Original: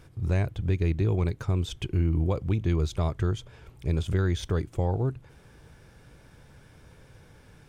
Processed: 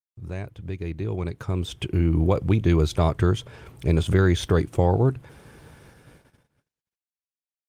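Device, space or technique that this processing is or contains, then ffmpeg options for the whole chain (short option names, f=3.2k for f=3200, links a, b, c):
video call: -af "highpass=f=120:p=1,dynaudnorm=f=200:g=17:m=14.5dB,agate=range=-58dB:threshold=-44dB:ratio=16:detection=peak,volume=-4.5dB" -ar 48000 -c:a libopus -b:a 32k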